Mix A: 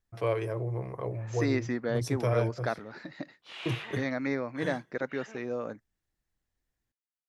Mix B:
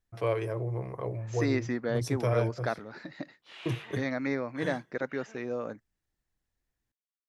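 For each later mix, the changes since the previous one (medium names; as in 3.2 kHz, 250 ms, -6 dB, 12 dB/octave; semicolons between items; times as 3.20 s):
background -5.0 dB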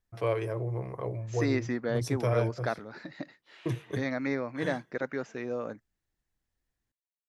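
background -9.0 dB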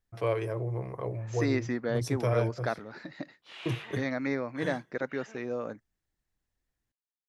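background +11.0 dB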